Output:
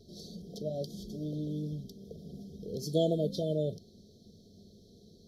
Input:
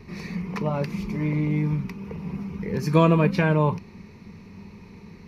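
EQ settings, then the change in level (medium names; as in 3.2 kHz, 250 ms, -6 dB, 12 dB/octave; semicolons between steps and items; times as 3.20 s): brick-wall FIR band-stop 720–3100 Hz; peaking EQ 180 Hz -6 dB 0.23 oct; bass shelf 460 Hz -11.5 dB; -2.0 dB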